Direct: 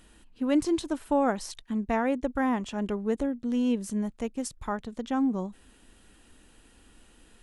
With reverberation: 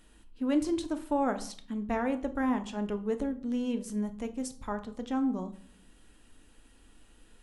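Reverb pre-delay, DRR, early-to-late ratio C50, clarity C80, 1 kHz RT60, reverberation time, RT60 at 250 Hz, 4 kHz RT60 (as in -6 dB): 3 ms, 8.0 dB, 15.0 dB, 18.0 dB, 0.50 s, 0.50 s, 0.85 s, 0.35 s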